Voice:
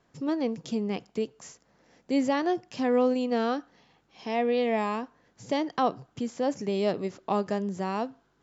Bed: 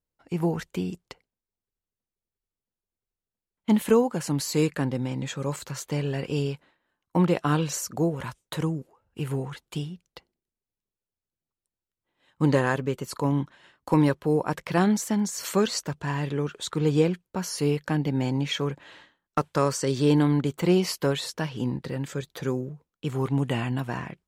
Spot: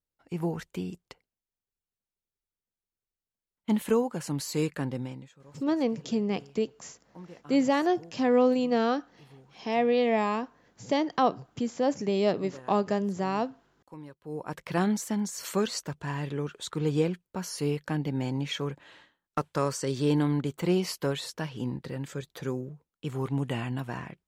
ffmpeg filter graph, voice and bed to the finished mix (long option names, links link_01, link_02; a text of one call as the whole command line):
ffmpeg -i stem1.wav -i stem2.wav -filter_complex "[0:a]adelay=5400,volume=1.5dB[link_01];[1:a]volume=15dB,afade=type=out:start_time=5:duration=0.29:silence=0.105925,afade=type=in:start_time=14.19:duration=0.53:silence=0.1[link_02];[link_01][link_02]amix=inputs=2:normalize=0" out.wav